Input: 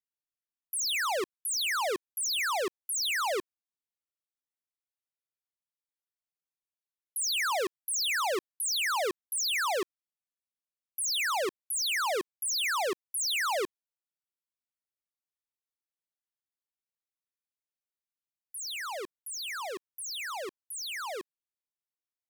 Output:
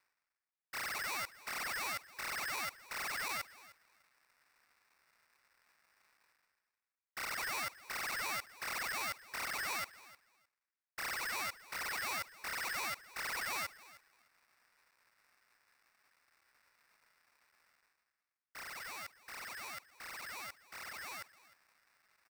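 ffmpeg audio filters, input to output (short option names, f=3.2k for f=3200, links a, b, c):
-af "areverse,acompressor=mode=upward:threshold=-39dB:ratio=2.5,areverse,aecho=1:1:307|614:0.112|0.0168,asetrate=38170,aresample=44100,atempo=1.15535,acrusher=samples=30:mix=1:aa=0.000001,aeval=exprs='val(0)*sgn(sin(2*PI*1700*n/s))':c=same,volume=-9dB"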